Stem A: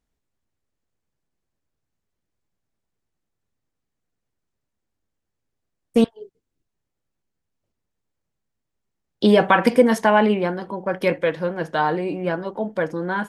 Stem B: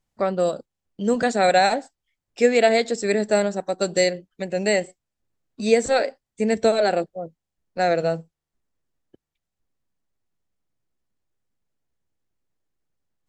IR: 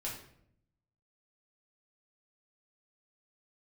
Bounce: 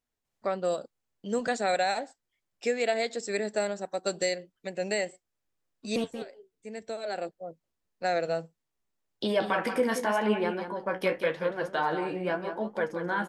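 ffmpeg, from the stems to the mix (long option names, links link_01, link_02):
-filter_complex "[0:a]alimiter=limit=-11dB:level=0:latency=1:release=101,flanger=delay=8:depth=8.2:regen=40:speed=0.86:shape=sinusoidal,volume=0dB,asplit=3[link_01][link_02][link_03];[link_02]volume=-9dB[link_04];[1:a]alimiter=limit=-11dB:level=0:latency=1:release=483,adelay=250,volume=-4.5dB[link_05];[link_03]apad=whole_len=596901[link_06];[link_05][link_06]sidechaincompress=threshold=-40dB:ratio=8:attack=6.3:release=1140[link_07];[link_04]aecho=0:1:179:1[link_08];[link_01][link_07][link_08]amix=inputs=3:normalize=0,lowshelf=frequency=310:gain=-8"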